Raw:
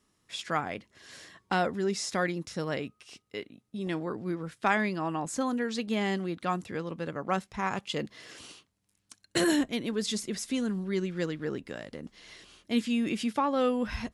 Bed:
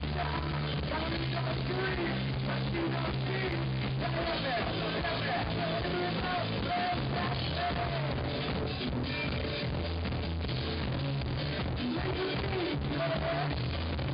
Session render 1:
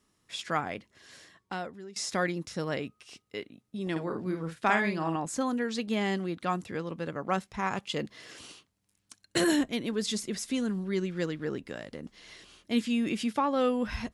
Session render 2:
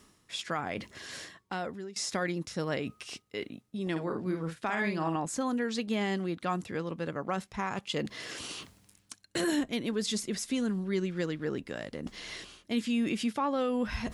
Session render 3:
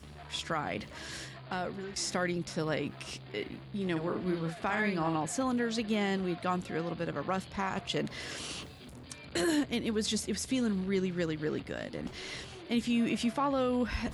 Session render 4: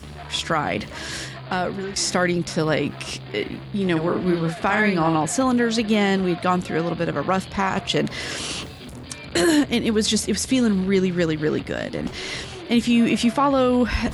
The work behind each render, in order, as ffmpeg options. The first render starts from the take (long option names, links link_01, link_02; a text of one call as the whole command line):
ffmpeg -i in.wav -filter_complex "[0:a]asettb=1/sr,asplit=3[link_01][link_02][link_03];[link_01]atrim=end=3.914[link_04];[link_02]atrim=start=3.91:end=5.16,asetpts=PTS-STARTPTS,afade=type=in:duration=0.004:curve=qsin,afade=type=out:start_time=1.246:duration=0.004:curve=qsin,asplit=2[link_05][link_06];[link_06]adelay=49,volume=-6dB[link_07];[link_05][link_07]amix=inputs=2:normalize=0,atrim=end_sample=55125[link_08];[link_03]atrim=start=5.156[link_09];[link_04][link_08]acrossfade=duration=0.004:curve1=hsin:curve2=qsin[link_10];[link_10][link_09]acrossfade=duration=0.004:curve1=qsin:curve2=hsin,asplit=2[link_11][link_12];[link_11]atrim=end=1.96,asetpts=PTS-STARTPTS,afade=type=out:start_time=0.68:duration=1.28:silence=0.0944061[link_13];[link_12]atrim=start=1.96,asetpts=PTS-STARTPTS,afade=type=in:duration=0.004:curve=hsin:silence=0.0944061[link_14];[link_13][link_14]concat=n=2:v=0:a=1" out.wav
ffmpeg -i in.wav -af "alimiter=limit=-21dB:level=0:latency=1:release=75,areverse,acompressor=mode=upward:threshold=-32dB:ratio=2.5,areverse" out.wav
ffmpeg -i in.wav -i bed.wav -filter_complex "[1:a]volume=-16dB[link_01];[0:a][link_01]amix=inputs=2:normalize=0" out.wav
ffmpeg -i in.wav -af "volume=11.5dB" out.wav